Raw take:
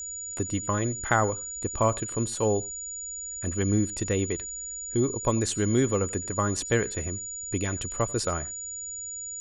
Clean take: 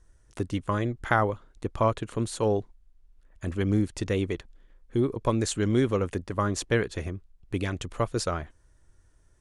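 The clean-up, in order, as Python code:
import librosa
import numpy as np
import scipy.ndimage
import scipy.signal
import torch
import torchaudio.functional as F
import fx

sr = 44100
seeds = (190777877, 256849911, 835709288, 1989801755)

y = fx.notch(x, sr, hz=6900.0, q=30.0)
y = fx.fix_echo_inverse(y, sr, delay_ms=91, level_db=-22.5)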